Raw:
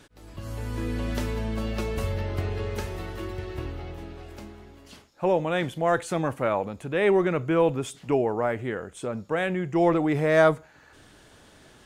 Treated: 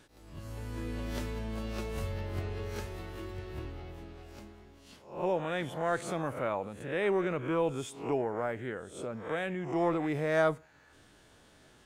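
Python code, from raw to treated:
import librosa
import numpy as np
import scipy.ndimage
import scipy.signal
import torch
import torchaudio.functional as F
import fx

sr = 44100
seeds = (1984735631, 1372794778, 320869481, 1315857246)

y = fx.spec_swells(x, sr, rise_s=0.46)
y = y * 10.0 ** (-8.5 / 20.0)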